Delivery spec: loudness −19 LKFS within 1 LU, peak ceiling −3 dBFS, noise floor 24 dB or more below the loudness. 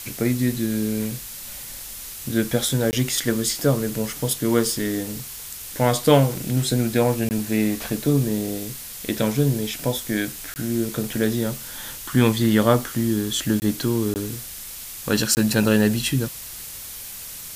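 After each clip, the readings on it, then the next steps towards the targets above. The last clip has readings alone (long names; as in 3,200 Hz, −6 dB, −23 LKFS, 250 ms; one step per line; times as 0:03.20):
number of dropouts 6; longest dropout 19 ms; background noise floor −36 dBFS; target noise floor −47 dBFS; integrated loudness −22.5 LKFS; sample peak −3.5 dBFS; target loudness −19.0 LKFS
→ repair the gap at 0:02.91/0:07.29/0:10.54/0:13.60/0:14.14/0:15.35, 19 ms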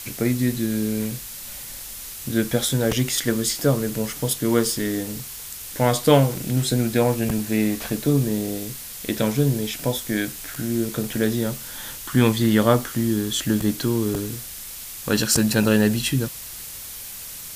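number of dropouts 0; background noise floor −36 dBFS; target noise floor −47 dBFS
→ noise reduction from a noise print 11 dB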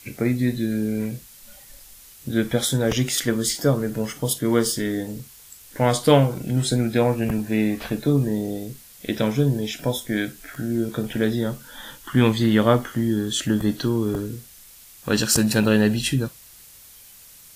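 background noise floor −47 dBFS; integrated loudness −22.5 LKFS; sample peak −3.5 dBFS; target loudness −19.0 LKFS
→ level +3.5 dB
brickwall limiter −3 dBFS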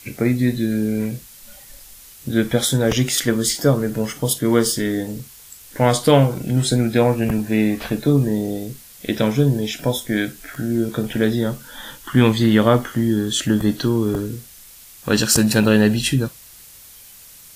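integrated loudness −19.0 LKFS; sample peak −3.0 dBFS; background noise floor −44 dBFS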